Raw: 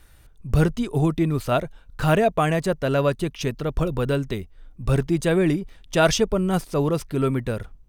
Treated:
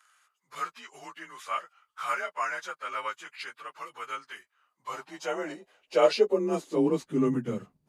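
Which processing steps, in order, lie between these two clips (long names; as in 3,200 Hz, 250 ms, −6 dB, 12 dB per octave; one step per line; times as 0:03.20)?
partials spread apart or drawn together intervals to 92%
high-pass filter sweep 1,300 Hz → 190 Hz, 0:04.48–0:07.45
level −5.5 dB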